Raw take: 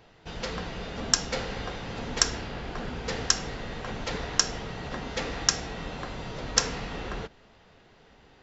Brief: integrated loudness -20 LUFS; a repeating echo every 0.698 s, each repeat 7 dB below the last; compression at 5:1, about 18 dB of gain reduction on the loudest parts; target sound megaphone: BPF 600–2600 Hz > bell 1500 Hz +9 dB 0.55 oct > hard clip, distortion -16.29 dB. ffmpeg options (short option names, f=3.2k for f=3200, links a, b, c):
-af "acompressor=threshold=-39dB:ratio=5,highpass=600,lowpass=2.6k,equalizer=f=1.5k:t=o:w=0.55:g=9,aecho=1:1:698|1396|2094|2792|3490:0.447|0.201|0.0905|0.0407|0.0183,asoftclip=type=hard:threshold=-33.5dB,volume=24dB"